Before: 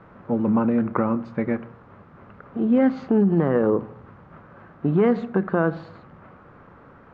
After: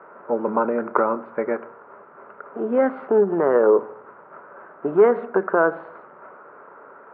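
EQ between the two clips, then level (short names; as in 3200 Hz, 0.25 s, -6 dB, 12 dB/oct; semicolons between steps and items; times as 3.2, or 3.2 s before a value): speaker cabinet 360–2400 Hz, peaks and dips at 410 Hz +10 dB, 610 Hz +8 dB, 950 Hz +8 dB, 1400 Hz +9 dB; -1.0 dB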